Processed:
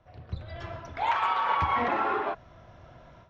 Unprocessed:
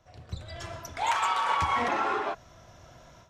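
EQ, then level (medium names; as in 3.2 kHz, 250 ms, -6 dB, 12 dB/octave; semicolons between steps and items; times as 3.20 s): distance through air 280 m; +2.0 dB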